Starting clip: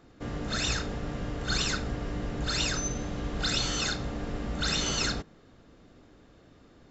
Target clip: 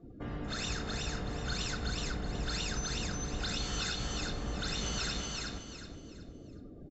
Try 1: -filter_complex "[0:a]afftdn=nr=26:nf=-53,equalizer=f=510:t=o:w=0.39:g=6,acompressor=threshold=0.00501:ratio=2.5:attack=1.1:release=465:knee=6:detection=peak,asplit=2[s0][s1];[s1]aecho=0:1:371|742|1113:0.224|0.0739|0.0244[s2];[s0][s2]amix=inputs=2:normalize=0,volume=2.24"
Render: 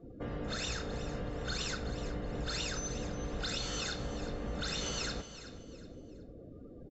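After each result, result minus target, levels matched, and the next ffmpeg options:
echo-to-direct -11 dB; 500 Hz band +4.0 dB
-filter_complex "[0:a]afftdn=nr=26:nf=-53,equalizer=f=510:t=o:w=0.39:g=6,acompressor=threshold=0.00501:ratio=2.5:attack=1.1:release=465:knee=6:detection=peak,asplit=2[s0][s1];[s1]aecho=0:1:371|742|1113|1484:0.794|0.262|0.0865|0.0285[s2];[s0][s2]amix=inputs=2:normalize=0,volume=2.24"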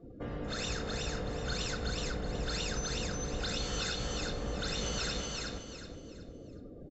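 500 Hz band +4.5 dB
-filter_complex "[0:a]afftdn=nr=26:nf=-53,equalizer=f=510:t=o:w=0.39:g=-3,acompressor=threshold=0.00501:ratio=2.5:attack=1.1:release=465:knee=6:detection=peak,asplit=2[s0][s1];[s1]aecho=0:1:371|742|1113|1484:0.794|0.262|0.0865|0.0285[s2];[s0][s2]amix=inputs=2:normalize=0,volume=2.24"

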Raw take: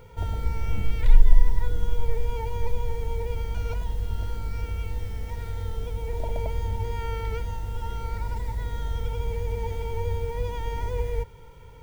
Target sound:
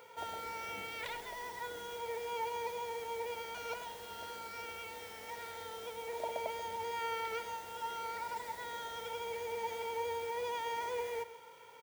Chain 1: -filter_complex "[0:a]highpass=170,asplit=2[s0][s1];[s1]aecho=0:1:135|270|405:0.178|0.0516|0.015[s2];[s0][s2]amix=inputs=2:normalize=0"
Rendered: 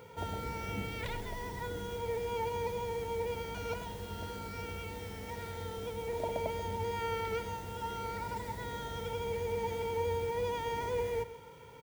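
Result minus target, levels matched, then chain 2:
125 Hz band +17.5 dB
-filter_complex "[0:a]highpass=580,asplit=2[s0][s1];[s1]aecho=0:1:135|270|405:0.178|0.0516|0.015[s2];[s0][s2]amix=inputs=2:normalize=0"

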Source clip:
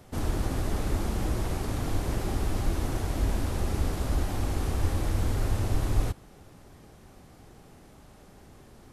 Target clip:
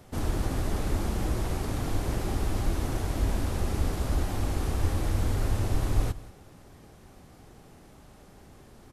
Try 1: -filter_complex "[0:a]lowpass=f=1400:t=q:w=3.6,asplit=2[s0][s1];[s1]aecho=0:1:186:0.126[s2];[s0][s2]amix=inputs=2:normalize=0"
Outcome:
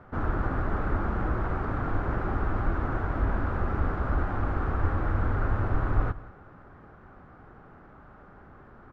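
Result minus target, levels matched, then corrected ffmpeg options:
1 kHz band +5.0 dB
-filter_complex "[0:a]asplit=2[s0][s1];[s1]aecho=0:1:186:0.126[s2];[s0][s2]amix=inputs=2:normalize=0"

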